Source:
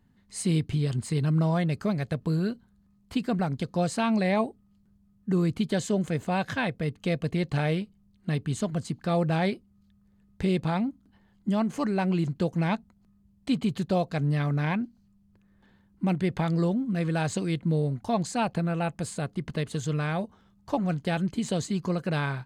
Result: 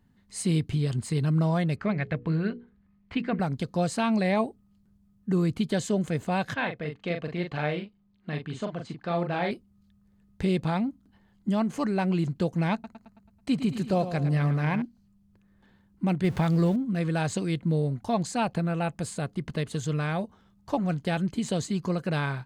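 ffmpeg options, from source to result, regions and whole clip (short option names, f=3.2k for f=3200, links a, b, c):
-filter_complex "[0:a]asettb=1/sr,asplit=3[a][b][c];[a]atrim=end=1.764[d];[b]atrim=start=1.76:end=3.4,asetpts=PTS-STARTPTS,afade=t=in:d=0.004:c=qsin,afade=t=out:st=1.636:d=0.004:c=qsin,lowpass=2.9k,equalizer=f=2.1k:w=1.6:g=9,bandreject=f=60:t=h:w=6,bandreject=f=120:t=h:w=6,bandreject=f=180:t=h:w=6,bandreject=f=240:t=h:w=6,bandreject=f=300:t=h:w=6,bandreject=f=360:t=h:w=6,bandreject=f=420:t=h:w=6,bandreject=f=480:t=h:w=6[e];[c]atrim=start=3.396[f];[d][e]acrossfade=d=0.004:c1=hsin:c2=qsin[g];[g][f]acrossfade=d=0.004:c1=qsin:c2=hsin,asettb=1/sr,asplit=3[h][i][j];[h]atrim=end=6.544[k];[i]atrim=start=6.54:end=9.51,asetpts=PTS-STARTPTS,afade=t=in:d=0.004:c=qsin,afade=t=out:st=2.966:d=0.004:c=qsin,lowpass=3.4k,lowshelf=f=220:g=-11.5,asplit=2[l][m];[m]adelay=40,volume=-5.5dB[n];[l][n]amix=inputs=2:normalize=0,atrim=end_sample=130977[o];[j]atrim=start=9.506[p];[k][o]acrossfade=d=0.004:c1=hsin:c2=qsin[q];[q][p]acrossfade=d=0.004:c1=qsin:c2=hsin,asettb=1/sr,asplit=3[r][s][t];[r]atrim=end=12.734[u];[s]atrim=start=12.73:end=14.82,asetpts=PTS-STARTPTS,afade=t=in:d=0.004:c=qsin,afade=t=out:st=2.086:d=0.004:c=qsin,equalizer=f=3.5k:w=6.7:g=-7.5,aecho=1:1:109|218|327|436|545|654:0.282|0.149|0.0792|0.042|0.0222|0.0118,atrim=end_sample=92169[v];[t]atrim=start=14.816[w];[u][v]acrossfade=d=0.004:c1=hsin:c2=qsin[x];[x][w]acrossfade=d=0.004:c1=qsin:c2=hsin,asettb=1/sr,asplit=3[y][z][aa];[y]atrim=end=16.244[ab];[z]atrim=start=16.24:end=16.76,asetpts=PTS-STARTPTS,afade=t=in:d=0.004:c=qsin,afade=t=out:st=0.516:d=0.004:c=qsin,aeval=exprs='val(0)+0.5*0.0112*sgn(val(0))':c=same,equalizer=f=80:t=o:w=1.6:g=6[ac];[aa]atrim=start=16.756[ad];[ab][ac]acrossfade=d=0.004:c1=hsin:c2=qsin[ae];[ae][ad]acrossfade=d=0.004:c1=qsin:c2=hsin"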